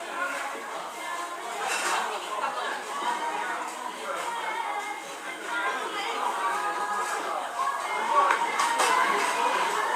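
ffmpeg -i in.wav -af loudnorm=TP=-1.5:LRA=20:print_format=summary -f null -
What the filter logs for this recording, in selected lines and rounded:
Input Integrated:    -27.2 LUFS
Input True Peak:      -7.7 dBTP
Input LRA:             5.8 LU
Input Threshold:     -37.2 LUFS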